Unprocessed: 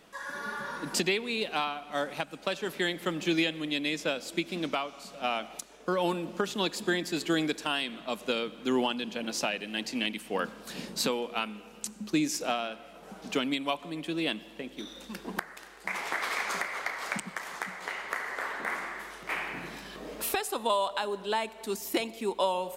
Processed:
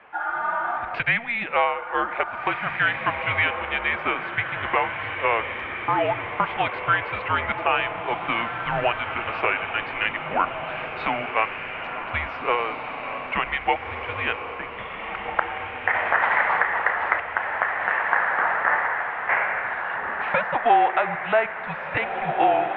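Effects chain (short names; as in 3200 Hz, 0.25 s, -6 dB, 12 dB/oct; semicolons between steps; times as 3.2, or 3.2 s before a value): graphic EQ 500/1000/2000 Hz -11/+8/+5 dB; diffused feedback echo 1.788 s, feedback 44%, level -6 dB; mistuned SSB -230 Hz 430–2800 Hz; gain +6.5 dB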